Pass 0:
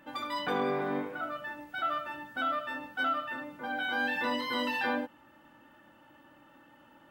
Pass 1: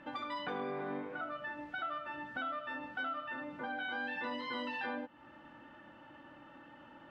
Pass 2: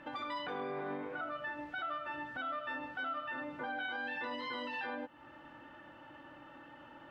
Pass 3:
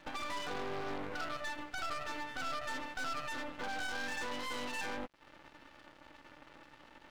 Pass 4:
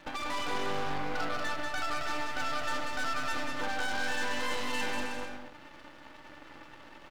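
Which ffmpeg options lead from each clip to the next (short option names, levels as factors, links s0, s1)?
-af "lowpass=3800,acompressor=threshold=0.00708:ratio=3,volume=1.41"
-af "alimiter=level_in=2.82:limit=0.0631:level=0:latency=1:release=55,volume=0.355,equalizer=f=210:w=3.5:g=-7.5,volume=1.26"
-af "aeval=exprs='0.0316*(cos(1*acos(clip(val(0)/0.0316,-1,1)))-cos(1*PI/2))+0.00708*(cos(3*acos(clip(val(0)/0.0316,-1,1)))-cos(3*PI/2))+0.00355*(cos(5*acos(clip(val(0)/0.0316,-1,1)))-cos(5*PI/2))+0.00562*(cos(6*acos(clip(val(0)/0.0316,-1,1)))-cos(6*PI/2))':c=same,aeval=exprs='sgn(val(0))*max(abs(val(0))-0.00141,0)':c=same,volume=1.33"
-af "aecho=1:1:190|313.5|393.8|446|479.9:0.631|0.398|0.251|0.158|0.1,volume=1.58"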